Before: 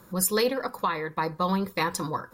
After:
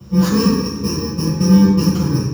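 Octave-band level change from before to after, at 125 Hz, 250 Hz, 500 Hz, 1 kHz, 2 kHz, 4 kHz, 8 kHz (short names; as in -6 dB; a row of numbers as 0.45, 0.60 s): +19.5, +18.5, +4.5, -1.5, -0.5, +9.0, +2.0 dB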